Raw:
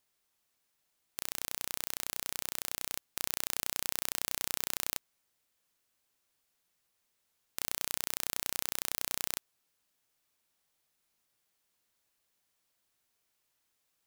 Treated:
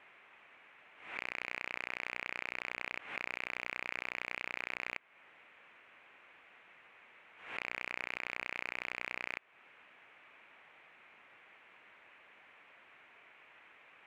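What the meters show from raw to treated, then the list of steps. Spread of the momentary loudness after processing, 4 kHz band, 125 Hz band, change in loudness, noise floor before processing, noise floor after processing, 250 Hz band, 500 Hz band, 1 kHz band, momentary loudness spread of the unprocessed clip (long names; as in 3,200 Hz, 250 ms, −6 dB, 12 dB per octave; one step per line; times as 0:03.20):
20 LU, −10.0 dB, −7.5 dB, −4.5 dB, −79 dBFS, −62 dBFS, −3.0 dB, 0.0 dB, +1.0 dB, 5 LU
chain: high shelf with overshoot 3,400 Hz −12.5 dB, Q 3
downward compressor 2.5 to 1, threshold −48 dBFS, peak gain reduction 11 dB
mid-hump overdrive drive 28 dB, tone 1,800 Hz, clips at −21 dBFS
high-frequency loss of the air 89 metres
background raised ahead of every attack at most 95 dB per second
level +5.5 dB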